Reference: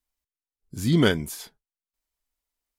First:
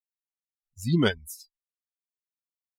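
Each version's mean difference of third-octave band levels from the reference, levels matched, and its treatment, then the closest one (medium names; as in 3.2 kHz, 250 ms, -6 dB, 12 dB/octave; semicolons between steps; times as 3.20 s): 10.0 dB: expander on every frequency bin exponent 3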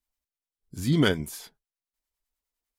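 1.0 dB: harmonic tremolo 9.9 Hz, depth 50%, crossover 890 Hz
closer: second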